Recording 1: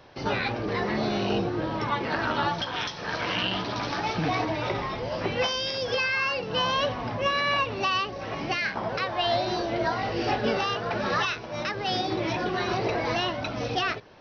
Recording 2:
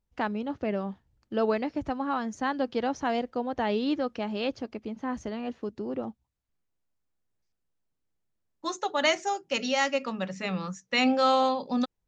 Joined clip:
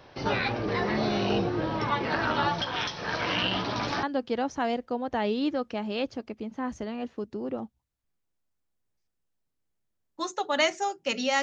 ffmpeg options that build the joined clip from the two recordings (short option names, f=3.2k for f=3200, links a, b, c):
-filter_complex "[1:a]asplit=2[a][b];[0:a]apad=whole_dur=11.42,atrim=end=11.42,atrim=end=4.032[c];[b]atrim=start=2.478:end=9.87[d];[a]atrim=start=1.72:end=2.48,asetpts=PTS-STARTPTS,volume=-13dB,afade=t=in:d=0.004:c=hsin,afade=t=out:st=0.756:d=0.004:c=hsin,adelay=3270[e];[c][d]acrossfade=d=0.004:c1=hsin:c2=hsin[f];[f][e]amix=inputs=2:normalize=0"